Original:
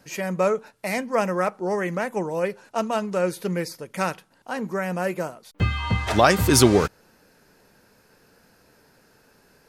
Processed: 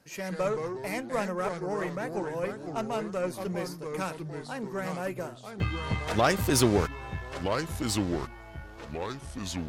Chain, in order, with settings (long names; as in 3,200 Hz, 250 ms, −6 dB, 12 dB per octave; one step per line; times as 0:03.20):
harmonic generator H 6 −22 dB, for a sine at −3 dBFS
delay with pitch and tempo change per echo 96 ms, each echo −3 semitones, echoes 3, each echo −6 dB
level −7.5 dB